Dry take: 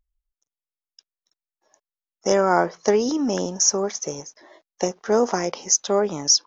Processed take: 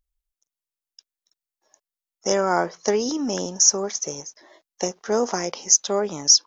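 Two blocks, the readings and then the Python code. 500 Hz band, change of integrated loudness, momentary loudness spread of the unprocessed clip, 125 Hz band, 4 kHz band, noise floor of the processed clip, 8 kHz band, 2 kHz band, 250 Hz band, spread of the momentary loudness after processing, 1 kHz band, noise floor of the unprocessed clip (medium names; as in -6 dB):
-3.0 dB, 0.0 dB, 10 LU, -3.0 dB, +2.5 dB, under -85 dBFS, no reading, -1.5 dB, -3.0 dB, 13 LU, -2.5 dB, under -85 dBFS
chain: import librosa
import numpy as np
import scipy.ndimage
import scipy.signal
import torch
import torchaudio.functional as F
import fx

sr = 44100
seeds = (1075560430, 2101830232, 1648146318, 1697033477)

y = fx.high_shelf(x, sr, hz=3500.0, db=7.5)
y = y * 10.0 ** (-3.0 / 20.0)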